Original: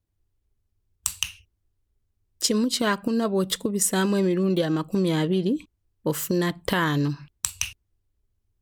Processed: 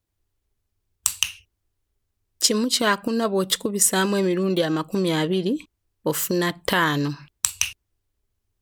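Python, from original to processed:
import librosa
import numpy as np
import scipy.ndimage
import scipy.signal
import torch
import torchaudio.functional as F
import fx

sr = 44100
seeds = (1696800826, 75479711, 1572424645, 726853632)

y = fx.low_shelf(x, sr, hz=310.0, db=-8.5)
y = F.gain(torch.from_numpy(y), 5.0).numpy()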